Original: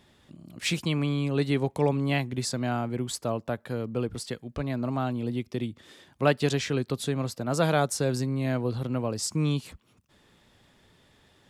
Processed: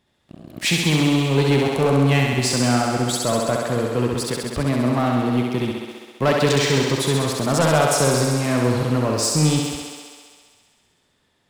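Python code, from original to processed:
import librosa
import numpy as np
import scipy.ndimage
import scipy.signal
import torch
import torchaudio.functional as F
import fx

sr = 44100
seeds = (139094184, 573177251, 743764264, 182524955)

y = fx.leveller(x, sr, passes=3)
y = fx.echo_thinned(y, sr, ms=66, feedback_pct=80, hz=180.0, wet_db=-3.0)
y = y * librosa.db_to_amplitude(-2.5)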